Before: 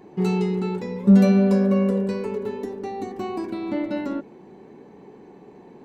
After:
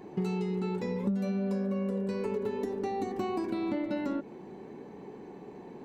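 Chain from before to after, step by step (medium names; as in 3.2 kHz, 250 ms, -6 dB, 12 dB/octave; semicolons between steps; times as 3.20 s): compression 12:1, threshold -28 dBFS, peak gain reduction 19 dB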